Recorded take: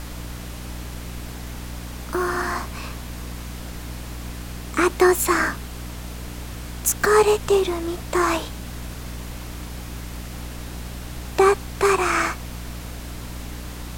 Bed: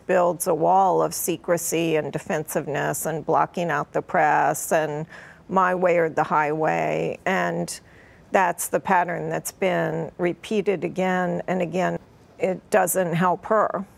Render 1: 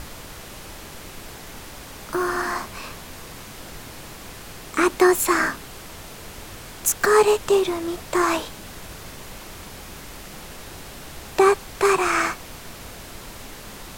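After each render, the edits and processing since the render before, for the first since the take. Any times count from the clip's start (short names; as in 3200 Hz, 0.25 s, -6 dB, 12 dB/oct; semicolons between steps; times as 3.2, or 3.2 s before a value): notches 60/120/180/240/300 Hz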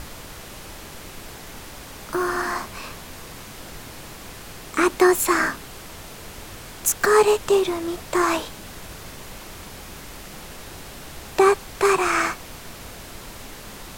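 nothing audible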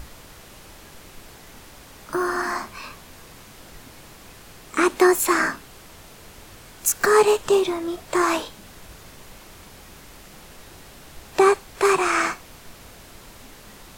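noise print and reduce 6 dB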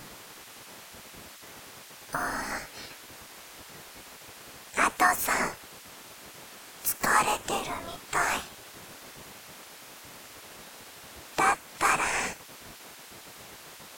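spectral gate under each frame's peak -10 dB weak; dynamic EQ 4300 Hz, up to -6 dB, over -43 dBFS, Q 1.4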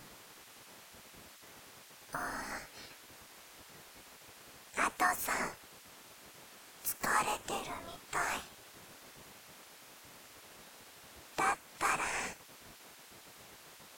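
gain -8 dB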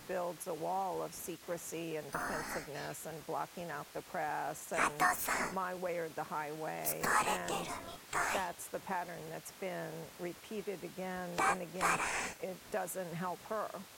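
add bed -19 dB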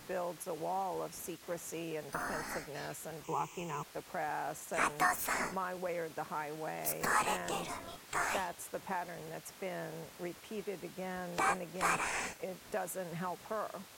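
3.24–3.83 ripple EQ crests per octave 0.72, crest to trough 16 dB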